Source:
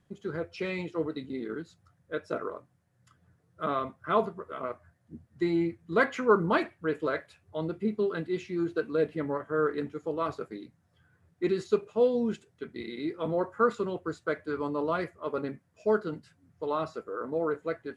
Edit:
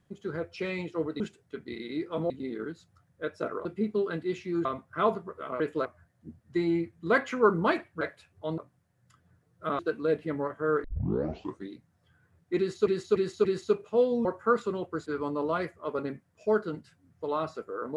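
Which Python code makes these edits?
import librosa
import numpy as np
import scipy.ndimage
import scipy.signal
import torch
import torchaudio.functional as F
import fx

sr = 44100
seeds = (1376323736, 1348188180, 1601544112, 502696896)

y = fx.edit(x, sr, fx.swap(start_s=2.55, length_s=1.21, other_s=7.69, other_length_s=1.0),
    fx.move(start_s=6.87, length_s=0.25, to_s=4.71),
    fx.tape_start(start_s=9.74, length_s=0.86),
    fx.repeat(start_s=11.48, length_s=0.29, count=4),
    fx.move(start_s=12.28, length_s=1.1, to_s=1.2),
    fx.cut(start_s=14.19, length_s=0.26), tone=tone)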